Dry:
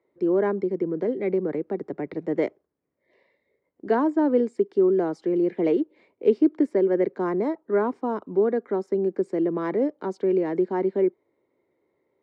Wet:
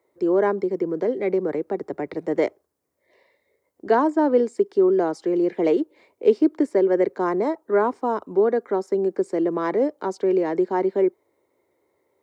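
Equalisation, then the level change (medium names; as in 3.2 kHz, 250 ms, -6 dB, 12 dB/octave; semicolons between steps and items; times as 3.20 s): tone controls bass -6 dB, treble +13 dB; peaking EQ 81 Hz +11.5 dB 1.1 oct; peaking EQ 910 Hz +6 dB 2.2 oct; 0.0 dB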